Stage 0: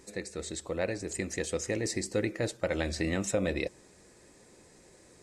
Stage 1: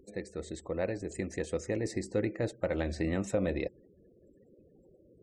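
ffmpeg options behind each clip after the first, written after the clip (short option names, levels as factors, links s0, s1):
-af "afftfilt=real='re*gte(hypot(re,im),0.00316)':imag='im*gte(hypot(re,im),0.00316)':win_size=1024:overlap=0.75,highshelf=f=2000:g=-11"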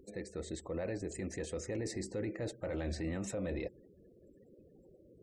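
-af "alimiter=level_in=2:limit=0.0631:level=0:latency=1:release=11,volume=0.501"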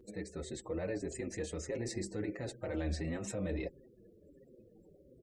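-filter_complex "[0:a]asplit=2[s0][s1];[s1]adelay=6,afreqshift=-1.5[s2];[s0][s2]amix=inputs=2:normalize=1,volume=1.5"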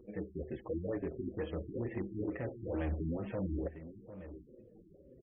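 -af "asoftclip=type=hard:threshold=0.0237,aecho=1:1:750:0.224,afftfilt=real='re*lt(b*sr/1024,370*pow(3500/370,0.5+0.5*sin(2*PI*2.2*pts/sr)))':imag='im*lt(b*sr/1024,370*pow(3500/370,0.5+0.5*sin(2*PI*2.2*pts/sr)))':win_size=1024:overlap=0.75,volume=1.26"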